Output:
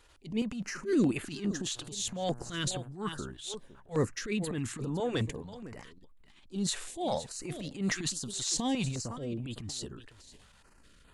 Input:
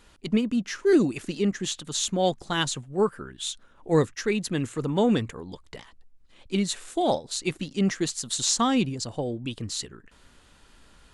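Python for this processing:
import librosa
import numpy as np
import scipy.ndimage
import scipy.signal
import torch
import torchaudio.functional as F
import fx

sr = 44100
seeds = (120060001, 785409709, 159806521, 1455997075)

p1 = fx.dmg_buzz(x, sr, base_hz=120.0, harmonics=14, level_db=-52.0, tilt_db=-6, odd_only=False, at=(1.75, 2.87), fade=0.02)
p2 = p1 + fx.echo_single(p1, sr, ms=507, db=-17.5, dry=0)
p3 = fx.transient(p2, sr, attack_db=-11, sustain_db=7)
p4 = fx.filter_held_notch(p3, sr, hz=4.8, low_hz=200.0, high_hz=5600.0)
y = p4 * 10.0 ** (-5.0 / 20.0)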